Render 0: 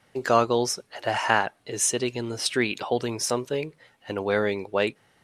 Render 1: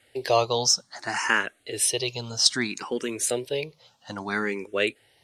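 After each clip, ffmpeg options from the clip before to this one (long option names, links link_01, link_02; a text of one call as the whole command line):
ffmpeg -i in.wav -filter_complex "[0:a]equalizer=frequency=6000:width=0.55:gain=10,asplit=2[link_01][link_02];[link_02]afreqshift=0.61[link_03];[link_01][link_03]amix=inputs=2:normalize=1" out.wav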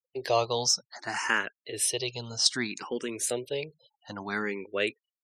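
ffmpeg -i in.wav -af "afftfilt=real='re*gte(hypot(re,im),0.00447)':imag='im*gte(hypot(re,im),0.00447)':win_size=1024:overlap=0.75,volume=-4dB" out.wav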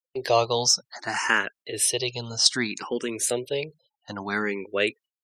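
ffmpeg -i in.wav -af "agate=range=-12dB:threshold=-52dB:ratio=16:detection=peak,volume=4.5dB" out.wav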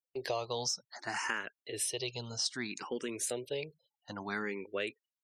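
ffmpeg -i in.wav -af "acompressor=threshold=-23dB:ratio=6,volume=-8dB" out.wav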